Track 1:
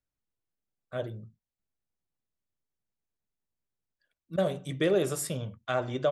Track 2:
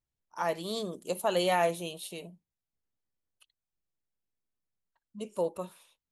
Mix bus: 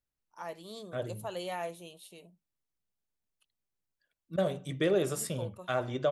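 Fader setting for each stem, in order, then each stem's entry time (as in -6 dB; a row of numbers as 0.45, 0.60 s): -2.0, -10.5 dB; 0.00, 0.00 s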